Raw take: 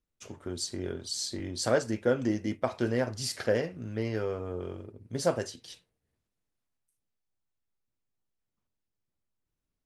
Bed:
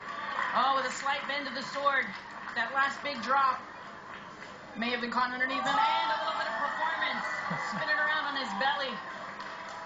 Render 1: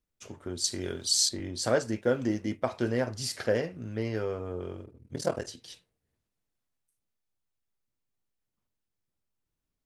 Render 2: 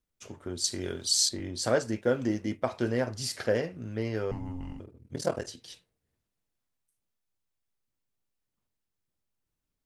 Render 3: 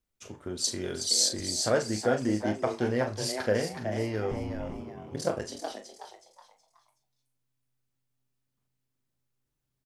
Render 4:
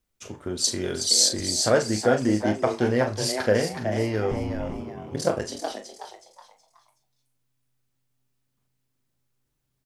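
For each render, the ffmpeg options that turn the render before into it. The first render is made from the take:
ffmpeg -i in.wav -filter_complex "[0:a]asettb=1/sr,asplit=3[link_01][link_02][link_03];[link_01]atrim=end=0.644[link_04];[link_02]atrim=start=0.64:end=1.29,asetpts=PTS-STARTPTS,afade=type=in:duration=0.004:curve=qsin,afade=type=out:start_time=0.646:duration=0.004:curve=qsin,highshelf=frequency=2200:gain=11[link_05];[link_03]atrim=start=1.286[link_06];[link_04][link_05]acrossfade=duration=0.004:curve1=hsin:curve2=qsin[link_07];[link_07][link_06]acrossfade=duration=0.004:curve1=qsin:curve2=hsin,asettb=1/sr,asplit=3[link_08][link_09][link_10];[link_08]atrim=end=2.014[link_11];[link_09]atrim=start=2.01:end=2.45,asetpts=PTS-STARTPTS,afade=type=in:duration=0.004:curve=qsin,afade=type=out:start_time=0.436:duration=0.004:curve=qsin,aeval=exprs='sgn(val(0))*max(abs(val(0))-0.00158,0)':channel_layout=same[link_12];[link_10]atrim=start=2.446[link_13];[link_11][link_12]acrossfade=duration=0.004:curve1=hsin:curve2=qsin[link_14];[link_14][link_13]acrossfade=duration=0.004:curve1=qsin:curve2=hsin,asettb=1/sr,asplit=3[link_15][link_16][link_17];[link_15]atrim=end=4.844[link_18];[link_16]atrim=start=4.84:end=5.48,asetpts=PTS-STARTPTS,afade=type=in:duration=0.004:curve=qsin,afade=type=out:start_time=0.636:duration=0.004:curve=qsin,aeval=exprs='val(0)*sin(2*PI*20*n/s)':channel_layout=same[link_19];[link_17]atrim=start=5.476[link_20];[link_18][link_19]acrossfade=duration=0.004:curve1=hsin:curve2=qsin[link_21];[link_21][link_20]acrossfade=duration=0.004:curve1=qsin:curve2=hsin" out.wav
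ffmpeg -i in.wav -filter_complex "[0:a]asettb=1/sr,asplit=3[link_01][link_02][link_03];[link_01]atrim=end=4.314[link_04];[link_02]atrim=start=4.31:end=4.8,asetpts=PTS-STARTPTS,afade=type=in:duration=0.004:curve=qsin,afade=type=out:start_time=0.486:duration=0.004:curve=qsin,afreqshift=-360[link_05];[link_03]atrim=start=4.796[link_06];[link_04][link_05]acrossfade=duration=0.004:curve1=hsin:curve2=qsin[link_07];[link_07][link_06]acrossfade=duration=0.004:curve1=qsin:curve2=hsin" out.wav
ffmpeg -i in.wav -filter_complex "[0:a]asplit=2[link_01][link_02];[link_02]adelay=38,volume=-9dB[link_03];[link_01][link_03]amix=inputs=2:normalize=0,asplit=5[link_04][link_05][link_06][link_07][link_08];[link_05]adelay=371,afreqshift=130,volume=-8dB[link_09];[link_06]adelay=742,afreqshift=260,volume=-17.6dB[link_10];[link_07]adelay=1113,afreqshift=390,volume=-27.3dB[link_11];[link_08]adelay=1484,afreqshift=520,volume=-36.9dB[link_12];[link_04][link_09][link_10][link_11][link_12]amix=inputs=5:normalize=0" out.wav
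ffmpeg -i in.wav -af "volume=5.5dB" out.wav

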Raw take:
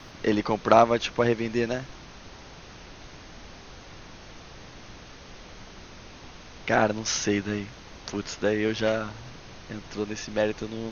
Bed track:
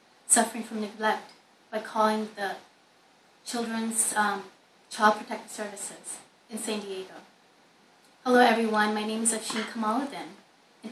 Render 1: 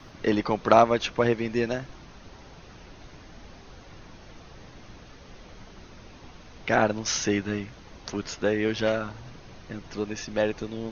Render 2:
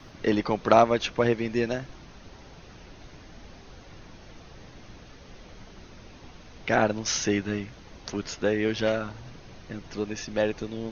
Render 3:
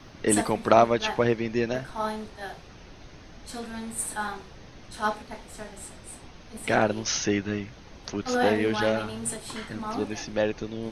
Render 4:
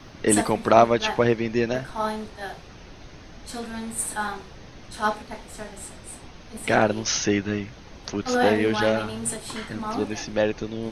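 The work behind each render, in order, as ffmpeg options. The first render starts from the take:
ffmpeg -i in.wav -af "afftdn=noise_reduction=6:noise_floor=-46" out.wav
ffmpeg -i in.wav -af "equalizer=frequency=1100:width=1.5:gain=-2" out.wav
ffmpeg -i in.wav -i bed.wav -filter_complex "[1:a]volume=-6dB[link_01];[0:a][link_01]amix=inputs=2:normalize=0" out.wav
ffmpeg -i in.wav -af "volume=3dB,alimiter=limit=-2dB:level=0:latency=1" out.wav

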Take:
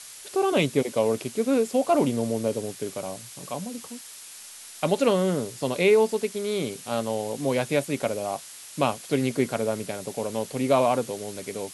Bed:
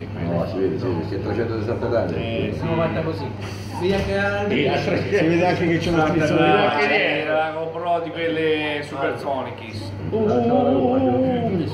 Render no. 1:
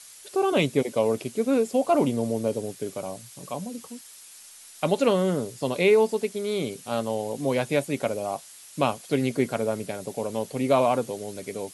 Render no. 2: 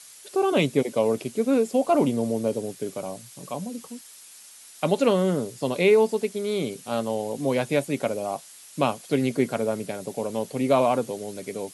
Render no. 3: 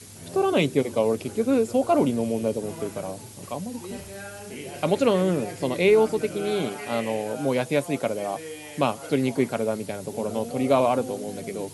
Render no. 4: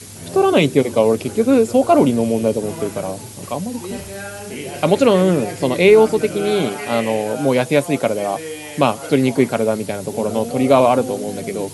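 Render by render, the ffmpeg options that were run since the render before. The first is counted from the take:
ffmpeg -i in.wav -af "afftdn=noise_reduction=6:noise_floor=-44" out.wav
ffmpeg -i in.wav -af "highpass=130,lowshelf=frequency=240:gain=4" out.wav
ffmpeg -i in.wav -i bed.wav -filter_complex "[1:a]volume=-18dB[link_01];[0:a][link_01]amix=inputs=2:normalize=0" out.wav
ffmpeg -i in.wav -af "volume=8dB,alimiter=limit=-1dB:level=0:latency=1" out.wav

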